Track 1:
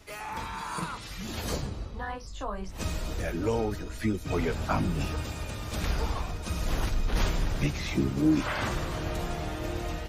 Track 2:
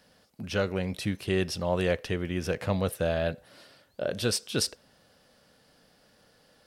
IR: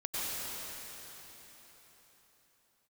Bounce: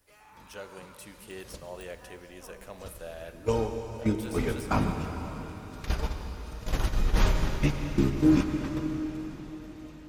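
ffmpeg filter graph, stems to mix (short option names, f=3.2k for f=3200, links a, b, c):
-filter_complex "[0:a]agate=range=-21dB:threshold=-26dB:ratio=16:detection=peak,bandreject=f=690:w=18,adynamicequalizer=threshold=0.00282:dfrequency=2300:dqfactor=0.7:tfrequency=2300:tqfactor=0.7:attack=5:release=100:ratio=0.375:range=2.5:mode=cutabove:tftype=highshelf,volume=1.5dB,asplit=2[a][b];[b]volume=-9.5dB[c];[1:a]deesser=0.8,bass=f=250:g=-13,treble=f=4k:g=-3,aexciter=amount=5:drive=5.6:freq=6.4k,volume=-13.5dB,asplit=2[d][e];[e]volume=-16.5dB[f];[2:a]atrim=start_sample=2205[g];[c][f]amix=inputs=2:normalize=0[h];[h][g]afir=irnorm=-1:irlink=0[i];[a][d][i]amix=inputs=3:normalize=0,bandreject=f=80.17:t=h:w=4,bandreject=f=160.34:t=h:w=4,bandreject=f=240.51:t=h:w=4,bandreject=f=320.68:t=h:w=4,bandreject=f=400.85:t=h:w=4,bandreject=f=481.02:t=h:w=4,bandreject=f=561.19:t=h:w=4,bandreject=f=641.36:t=h:w=4,bandreject=f=721.53:t=h:w=4,bandreject=f=801.7:t=h:w=4,bandreject=f=881.87:t=h:w=4,bandreject=f=962.04:t=h:w=4,bandreject=f=1.04221k:t=h:w=4,bandreject=f=1.12238k:t=h:w=4,bandreject=f=1.20255k:t=h:w=4,bandreject=f=1.28272k:t=h:w=4,bandreject=f=1.36289k:t=h:w=4,bandreject=f=1.44306k:t=h:w=4,bandreject=f=1.52323k:t=h:w=4,bandreject=f=1.6034k:t=h:w=4,bandreject=f=1.68357k:t=h:w=4,bandreject=f=1.76374k:t=h:w=4,bandreject=f=1.84391k:t=h:w=4,bandreject=f=1.92408k:t=h:w=4,bandreject=f=2.00425k:t=h:w=4,bandreject=f=2.08442k:t=h:w=4,bandreject=f=2.16459k:t=h:w=4,bandreject=f=2.24476k:t=h:w=4,bandreject=f=2.32493k:t=h:w=4,bandreject=f=2.4051k:t=h:w=4"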